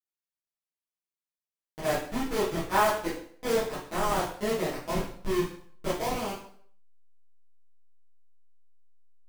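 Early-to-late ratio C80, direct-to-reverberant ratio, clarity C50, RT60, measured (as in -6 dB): 9.0 dB, -10.5 dB, 4.5 dB, 0.60 s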